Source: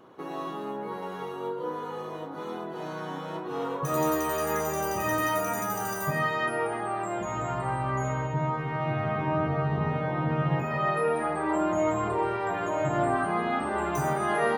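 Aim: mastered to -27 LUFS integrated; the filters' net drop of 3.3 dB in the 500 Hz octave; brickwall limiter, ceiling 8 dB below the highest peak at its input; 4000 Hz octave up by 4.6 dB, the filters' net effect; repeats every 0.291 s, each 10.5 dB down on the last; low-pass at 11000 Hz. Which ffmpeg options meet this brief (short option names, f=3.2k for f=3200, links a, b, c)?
-af "lowpass=11k,equalizer=f=500:t=o:g=-4.5,equalizer=f=4k:t=o:g=6.5,alimiter=limit=-23dB:level=0:latency=1,aecho=1:1:291|582|873:0.299|0.0896|0.0269,volume=5dB"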